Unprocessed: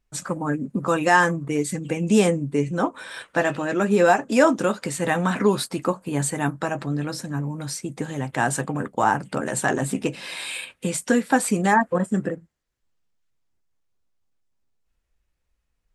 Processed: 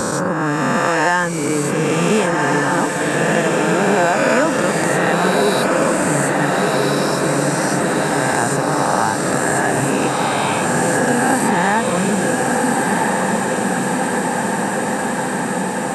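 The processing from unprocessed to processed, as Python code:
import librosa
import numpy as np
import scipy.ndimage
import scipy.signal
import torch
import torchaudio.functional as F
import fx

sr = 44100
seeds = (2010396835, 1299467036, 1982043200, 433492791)

y = fx.spec_swells(x, sr, rise_s=2.16)
y = fx.echo_diffused(y, sr, ms=1424, feedback_pct=63, wet_db=-3)
y = fx.band_squash(y, sr, depth_pct=70)
y = y * librosa.db_to_amplitude(-1.0)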